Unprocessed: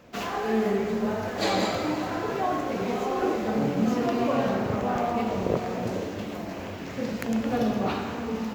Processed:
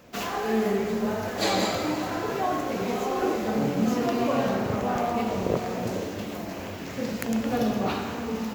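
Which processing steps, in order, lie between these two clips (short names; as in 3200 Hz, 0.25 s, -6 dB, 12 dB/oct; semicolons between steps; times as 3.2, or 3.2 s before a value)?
high shelf 6300 Hz +8.5 dB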